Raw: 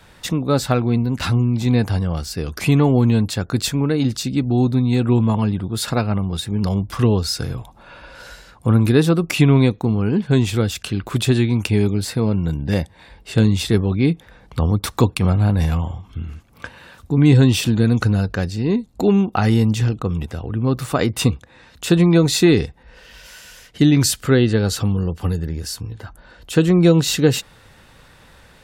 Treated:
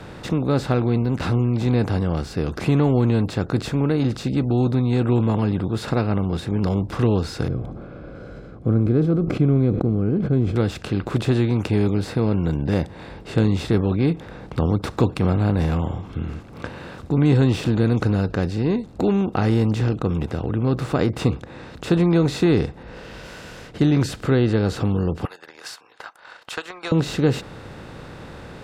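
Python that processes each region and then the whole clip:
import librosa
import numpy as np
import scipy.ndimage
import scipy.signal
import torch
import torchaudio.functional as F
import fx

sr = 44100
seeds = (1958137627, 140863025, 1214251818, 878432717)

y = fx.chain(x, sr, fx.moving_average(points=48),
    fx.sustainer(db_per_s=75.0), at=(7.48, 10.56))
y = fx.chain(y, sr, fx.highpass(hz=970.0, slope=24),
    fx.transient(attack_db=8, sustain_db=-9), at=(25.25, 26.92))
y = fx.bin_compress(y, sr, power=0.6)
y = fx.lowpass(y, sr, hz=1700.0, slope=6)
y = y * librosa.db_to_amplitude(-6.0)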